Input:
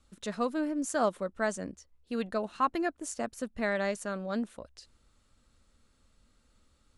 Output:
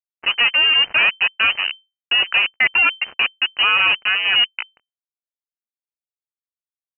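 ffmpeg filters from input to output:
-af "dynaudnorm=f=110:g=3:m=11dB,aresample=16000,acrusher=bits=3:mix=0:aa=0.5,aresample=44100,asoftclip=type=hard:threshold=-20dB,lowpass=f=2.6k:t=q:w=0.5098,lowpass=f=2.6k:t=q:w=0.6013,lowpass=f=2.6k:t=q:w=0.9,lowpass=f=2.6k:t=q:w=2.563,afreqshift=-3100,volume=8dB"

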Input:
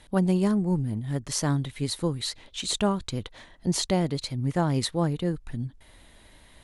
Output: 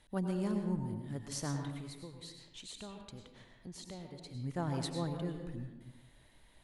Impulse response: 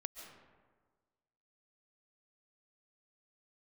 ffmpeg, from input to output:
-filter_complex "[0:a]asettb=1/sr,asplit=3[a][b][c];[a]atrim=end=1.764[d];[b]atrim=start=1.76:end=4.35,asetpts=PTS-STARTPTS,afade=t=in:d=0.004:c=qsin,afade=t=out:st=2.586:d=0.004:c=qsin,acompressor=threshold=-38dB:ratio=2.5[e];[c]atrim=start=4.346[f];[d][e]acrossfade=d=0.004:c1=hsin:c2=qsin[g];[g][f]acrossfade=d=0.004:c1=qsin:c2=hsin[h];[1:a]atrim=start_sample=2205,asetrate=61740,aresample=44100[i];[h][i]afir=irnorm=-1:irlink=0,volume=-5dB"

